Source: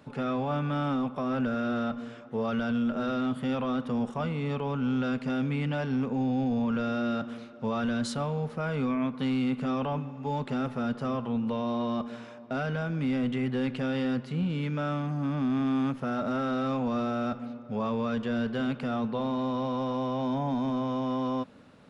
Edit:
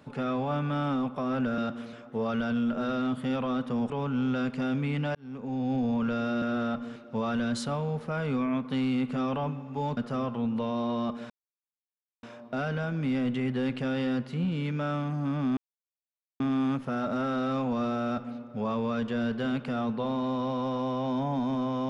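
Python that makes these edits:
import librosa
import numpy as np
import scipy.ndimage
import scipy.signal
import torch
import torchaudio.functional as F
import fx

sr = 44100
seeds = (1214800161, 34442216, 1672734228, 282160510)

y = fx.edit(x, sr, fx.swap(start_s=1.58, length_s=0.54, other_s=7.1, other_length_s=0.35),
    fx.cut(start_s=4.09, length_s=0.49),
    fx.fade_in_span(start_s=5.83, length_s=0.61),
    fx.cut(start_s=10.46, length_s=0.42),
    fx.insert_silence(at_s=12.21, length_s=0.93),
    fx.insert_silence(at_s=15.55, length_s=0.83), tone=tone)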